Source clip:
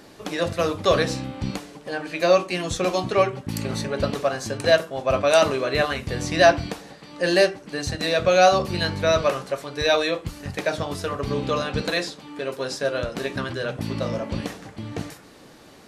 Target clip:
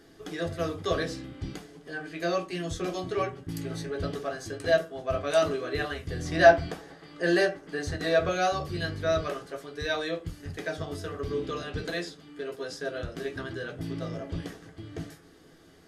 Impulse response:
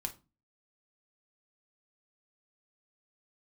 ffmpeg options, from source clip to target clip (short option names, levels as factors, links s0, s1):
-filter_complex "[0:a]asettb=1/sr,asplit=3[s0][s1][s2];[s0]atrim=end=6.254[s3];[s1]atrim=start=6.25:end=8.29,asetpts=PTS-STARTPTS,afade=t=in:d=0.004:c=qsin,afade=t=out:st=2.036:d=0.004:c=qsin,equalizer=f=910:w=0.5:g=7[s4];[s2]atrim=start=8.286[s5];[s3][s4]acrossfade=d=0.004:c1=hsin:c2=qsin[s6];[s6][s5]acrossfade=d=0.004:c1=qsin:c2=hsin[s7];[1:a]atrim=start_sample=2205,asetrate=88200,aresample=44100[s8];[s7][s8]afir=irnorm=-1:irlink=0,volume=0.708"